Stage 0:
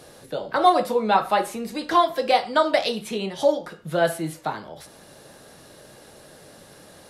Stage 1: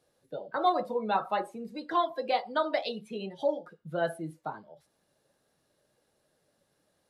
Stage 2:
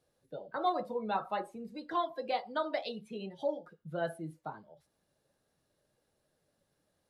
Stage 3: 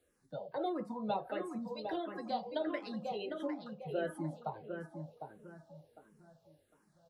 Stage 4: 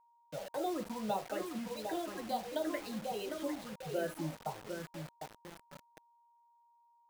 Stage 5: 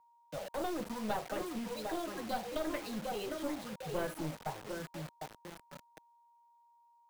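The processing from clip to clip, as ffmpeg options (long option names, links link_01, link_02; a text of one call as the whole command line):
ffmpeg -i in.wav -af "afftdn=noise_reduction=17:noise_floor=-31,volume=-9dB" out.wav
ffmpeg -i in.wav -af "lowshelf=frequency=120:gain=8.5,volume=-5.5dB" out.wav
ffmpeg -i in.wav -filter_complex "[0:a]acrossover=split=500[link_01][link_02];[link_02]acompressor=threshold=-39dB:ratio=4[link_03];[link_01][link_03]amix=inputs=2:normalize=0,asplit=2[link_04][link_05];[link_05]adelay=754,lowpass=frequency=2000:poles=1,volume=-5dB,asplit=2[link_06][link_07];[link_07]adelay=754,lowpass=frequency=2000:poles=1,volume=0.35,asplit=2[link_08][link_09];[link_09]adelay=754,lowpass=frequency=2000:poles=1,volume=0.35,asplit=2[link_10][link_11];[link_11]adelay=754,lowpass=frequency=2000:poles=1,volume=0.35[link_12];[link_06][link_08][link_10][link_12]amix=inputs=4:normalize=0[link_13];[link_04][link_13]amix=inputs=2:normalize=0,asplit=2[link_14][link_15];[link_15]afreqshift=-1.5[link_16];[link_14][link_16]amix=inputs=2:normalize=1,volume=4dB" out.wav
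ffmpeg -i in.wav -af "acrusher=bits=7:mix=0:aa=0.000001,aeval=exprs='val(0)+0.000501*sin(2*PI*940*n/s)':channel_layout=same" out.wav
ffmpeg -i in.wav -filter_complex "[0:a]acrossover=split=300[link_01][link_02];[link_01]acrusher=bits=3:mode=log:mix=0:aa=0.000001[link_03];[link_03][link_02]amix=inputs=2:normalize=0,aeval=exprs='clip(val(0),-1,0.00944)':channel_layout=same,volume=2dB" out.wav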